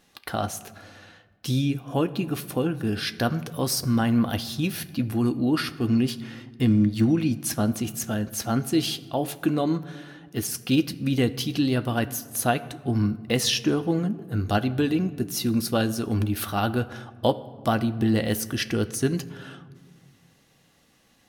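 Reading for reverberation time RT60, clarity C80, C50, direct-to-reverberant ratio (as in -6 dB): 1.7 s, 18.0 dB, 16.5 dB, 10.0 dB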